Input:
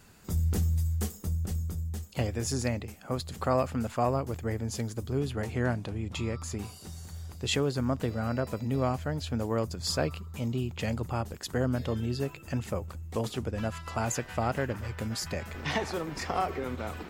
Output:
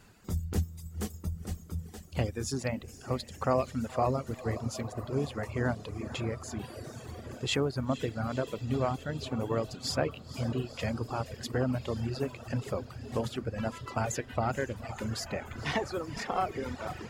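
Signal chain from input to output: de-hum 80.28 Hz, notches 3; on a send: diffused feedback echo 0.491 s, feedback 80%, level -11 dB; on the sum: reverb removal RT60 1.4 s; high shelf 6600 Hz -6.5 dB

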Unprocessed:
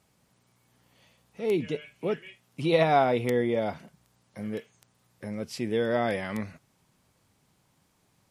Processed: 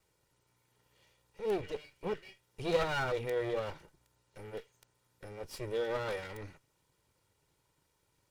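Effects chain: minimum comb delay 2.1 ms; gain -5.5 dB

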